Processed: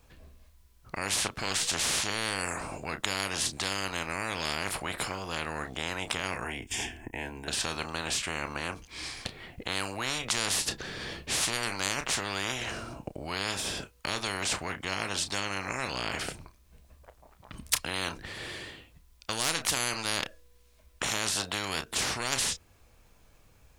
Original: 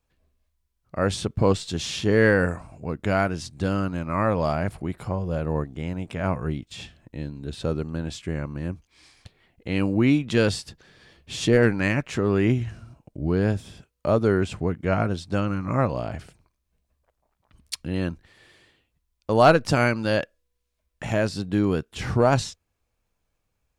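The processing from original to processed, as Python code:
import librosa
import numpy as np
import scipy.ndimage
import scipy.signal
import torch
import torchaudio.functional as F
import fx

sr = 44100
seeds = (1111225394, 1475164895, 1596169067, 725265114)

y = fx.fixed_phaser(x, sr, hz=830.0, stages=8, at=(6.44, 7.48))
y = fx.doubler(y, sr, ms=31.0, db=-13.5)
y = fx.spectral_comp(y, sr, ratio=10.0)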